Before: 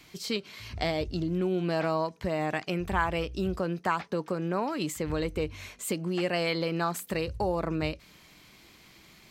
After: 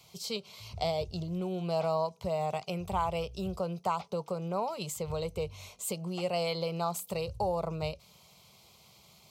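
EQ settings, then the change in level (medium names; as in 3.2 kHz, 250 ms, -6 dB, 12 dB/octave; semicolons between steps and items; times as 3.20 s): high-pass 98 Hz 12 dB/octave; bass shelf 210 Hz +3 dB; static phaser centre 710 Hz, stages 4; 0.0 dB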